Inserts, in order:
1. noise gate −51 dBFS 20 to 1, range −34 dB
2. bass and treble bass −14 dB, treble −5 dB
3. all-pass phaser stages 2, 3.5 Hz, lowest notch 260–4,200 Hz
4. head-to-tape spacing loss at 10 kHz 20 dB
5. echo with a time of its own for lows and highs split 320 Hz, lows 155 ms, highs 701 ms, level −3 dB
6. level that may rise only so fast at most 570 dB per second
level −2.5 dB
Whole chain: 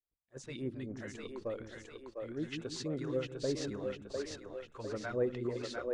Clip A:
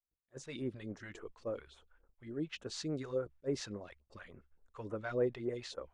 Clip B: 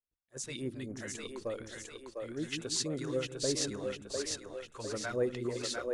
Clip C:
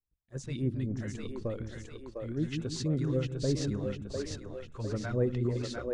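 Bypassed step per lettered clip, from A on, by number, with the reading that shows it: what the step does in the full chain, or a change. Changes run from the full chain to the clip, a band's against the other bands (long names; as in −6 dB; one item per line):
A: 5, change in momentary loudness spread +7 LU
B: 4, 8 kHz band +12.0 dB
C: 2, 125 Hz band +10.5 dB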